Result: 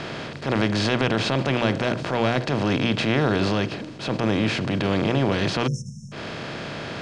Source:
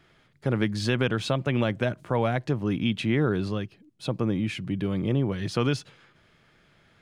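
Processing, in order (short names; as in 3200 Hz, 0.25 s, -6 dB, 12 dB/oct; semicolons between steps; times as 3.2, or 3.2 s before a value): per-bin compression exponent 0.4; Chebyshev low-pass 6000 Hz, order 2; in parallel at -2.5 dB: limiter -14.5 dBFS, peak gain reduction 7.5 dB; on the sum: spectral delete 5.67–6.13, 230–5300 Hz; transient shaper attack -7 dB, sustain -1 dB; notches 60/120/180/240/300/360/420/480/540 Hz; gain -2 dB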